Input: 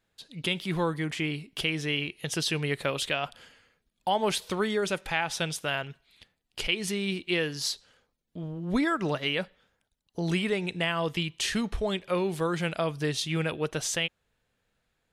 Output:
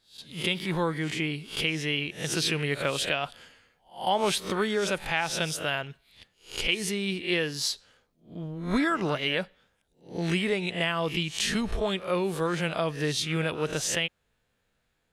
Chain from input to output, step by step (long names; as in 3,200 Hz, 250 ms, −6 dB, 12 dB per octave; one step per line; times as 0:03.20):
peak hold with a rise ahead of every peak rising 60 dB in 0.35 s